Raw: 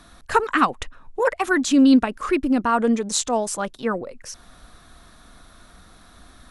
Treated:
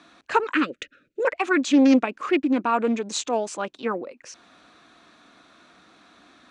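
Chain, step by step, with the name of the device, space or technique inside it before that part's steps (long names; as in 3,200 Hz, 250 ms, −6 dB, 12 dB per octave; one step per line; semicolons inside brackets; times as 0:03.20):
0:00.54–0:01.25: elliptic band-stop filter 580–1,400 Hz
full-range speaker at full volume (highs frequency-modulated by the lows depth 0.44 ms; loudspeaker in its box 230–6,900 Hz, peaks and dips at 310 Hz +6 dB, 2,500 Hz +7 dB, 5,300 Hz −4 dB)
level −2.5 dB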